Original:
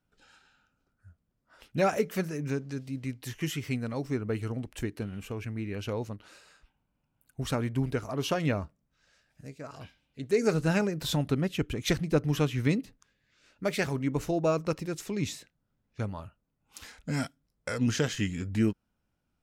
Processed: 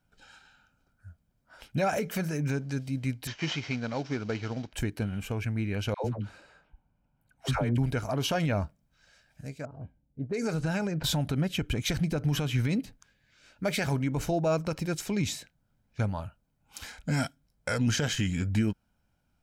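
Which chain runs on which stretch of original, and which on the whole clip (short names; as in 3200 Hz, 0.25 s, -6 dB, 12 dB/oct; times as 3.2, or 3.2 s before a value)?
3.27–4.73 CVSD 32 kbps + HPF 240 Hz 6 dB/oct
5.94–7.78 high shelf 5200 Hz -7.5 dB + dispersion lows, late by 0.102 s, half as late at 620 Hz + mismatched tape noise reduction decoder only
9.65–11.04 low-pass opened by the level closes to 310 Hz, open at -21.5 dBFS + compressor 5:1, threshold -29 dBFS
whole clip: limiter -23 dBFS; comb 1.3 ms, depth 35%; gain +4 dB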